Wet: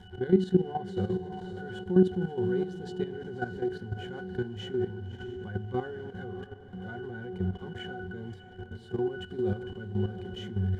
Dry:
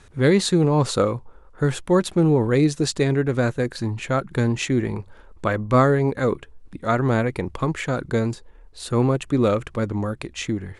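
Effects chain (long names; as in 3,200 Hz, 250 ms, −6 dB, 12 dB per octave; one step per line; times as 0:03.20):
converter with a step at zero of −25.5 dBFS
0:05.90–0:08.20: downward compressor 2.5 to 1, threshold −20 dBFS, peak gain reduction 4.5 dB
high-shelf EQ 2,200 Hz +7.5 dB
resonances in every octave F#, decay 0.26 s
feedback delay with all-pass diffusion 595 ms, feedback 43%, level −9.5 dB
output level in coarse steps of 11 dB
convolution reverb RT60 0.75 s, pre-delay 3 ms, DRR 18 dB
level +5.5 dB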